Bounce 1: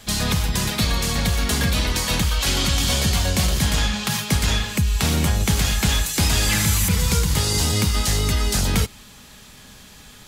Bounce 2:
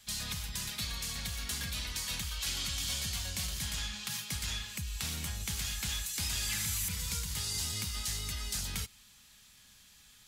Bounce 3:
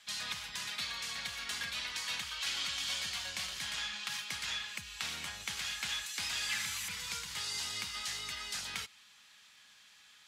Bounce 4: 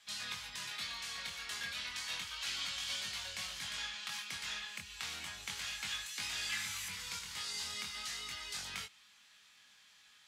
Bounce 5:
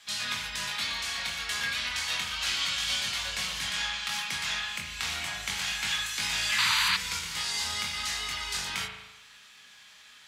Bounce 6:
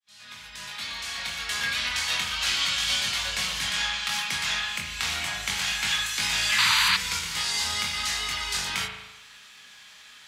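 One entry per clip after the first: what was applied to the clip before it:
guitar amp tone stack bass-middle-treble 5-5-5; level −5.5 dB
resonant band-pass 1,700 Hz, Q 0.6; level +4 dB
chorus effect 0.32 Hz, delay 19.5 ms, depth 4.5 ms
spring reverb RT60 1 s, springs 37 ms, chirp 60 ms, DRR 3 dB; sound drawn into the spectrogram noise, 0:06.58–0:06.97, 880–4,900 Hz −35 dBFS; level +9 dB
fade in at the beginning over 1.85 s; level +4 dB

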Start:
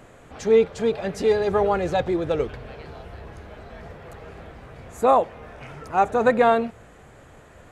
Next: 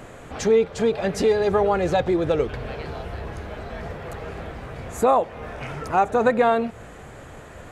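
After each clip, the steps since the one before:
downward compressor 2 to 1, threshold −28 dBFS, peak gain reduction 9 dB
level +7 dB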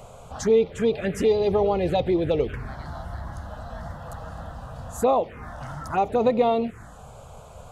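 phaser swept by the level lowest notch 270 Hz, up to 1,600 Hz, full sweep at −16.5 dBFS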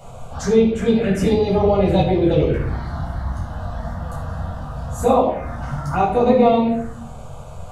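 rectangular room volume 840 cubic metres, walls furnished, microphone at 7.5 metres
level −3.5 dB

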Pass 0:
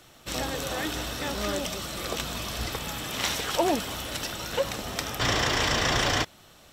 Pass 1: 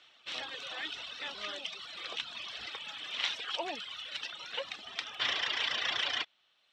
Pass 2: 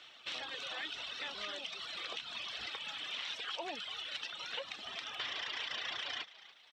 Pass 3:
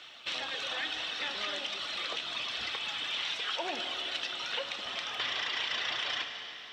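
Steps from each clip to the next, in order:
reverb reduction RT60 1.2 s; Chebyshev low-pass filter 3,300 Hz, order 3; first difference; level +8 dB
brickwall limiter −25.5 dBFS, peak gain reduction 11 dB; downward compressor 2.5 to 1, threshold −47 dBFS, peak gain reduction 10 dB; echo with shifted repeats 286 ms, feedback 46%, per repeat +83 Hz, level −17.5 dB; level +5 dB
convolution reverb RT60 3.6 s, pre-delay 16 ms, DRR 5 dB; level +5.5 dB

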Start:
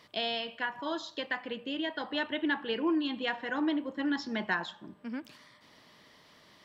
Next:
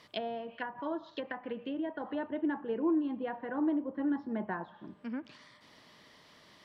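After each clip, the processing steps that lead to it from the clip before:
treble cut that deepens with the level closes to 880 Hz, closed at −31.5 dBFS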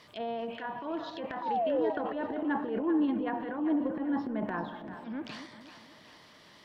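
sound drawn into the spectrogram fall, 0:01.42–0:01.90, 410–1,000 Hz −31 dBFS
transient designer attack −9 dB, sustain +9 dB
echo with a time of its own for lows and highs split 650 Hz, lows 237 ms, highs 390 ms, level −11 dB
level +2 dB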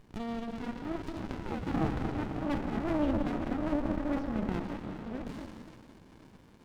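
delay that plays each chunk backwards 530 ms, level −12.5 dB
convolution reverb RT60 1.1 s, pre-delay 110 ms, DRR 5.5 dB
windowed peak hold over 65 samples
level +1.5 dB

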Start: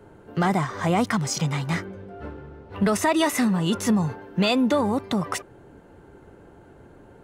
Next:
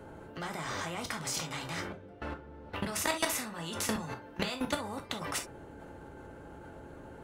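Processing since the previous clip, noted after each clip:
output level in coarse steps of 19 dB
reverb whose tail is shaped and stops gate 90 ms falling, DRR 3.5 dB
every bin compressed towards the loudest bin 2 to 1
level −6.5 dB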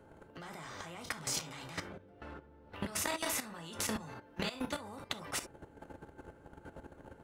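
output level in coarse steps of 12 dB
level +1 dB

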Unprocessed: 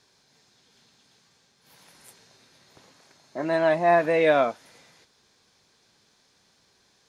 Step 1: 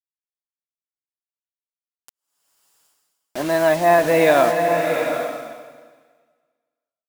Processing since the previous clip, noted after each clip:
bit reduction 6 bits
slow-attack reverb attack 770 ms, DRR 4 dB
level +4.5 dB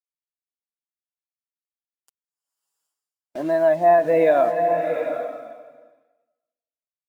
downward compressor 1.5 to 1, threshold −44 dBFS, peak gain reduction 12 dB
every bin expanded away from the loudest bin 1.5 to 1
level +8.5 dB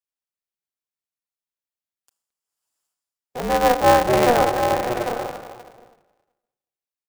far-end echo of a speakerphone 220 ms, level −23 dB
four-comb reverb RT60 1 s, combs from 26 ms, DRR 14 dB
ring modulator with a square carrier 120 Hz

